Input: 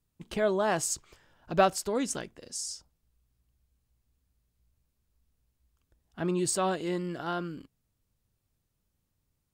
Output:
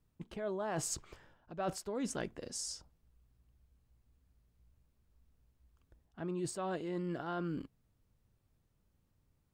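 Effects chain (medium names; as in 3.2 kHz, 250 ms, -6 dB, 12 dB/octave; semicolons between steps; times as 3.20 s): treble shelf 2.9 kHz -10 dB; reverse; compression 20:1, threshold -38 dBFS, peak gain reduction 21.5 dB; reverse; trim +4 dB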